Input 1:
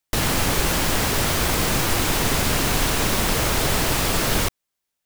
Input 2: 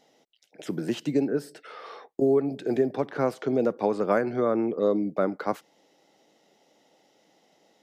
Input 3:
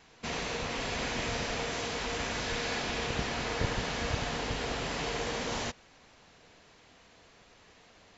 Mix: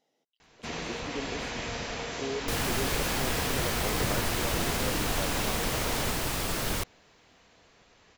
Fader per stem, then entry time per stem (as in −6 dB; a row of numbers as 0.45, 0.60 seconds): −9.5, −13.5, −1.5 decibels; 2.35, 0.00, 0.40 seconds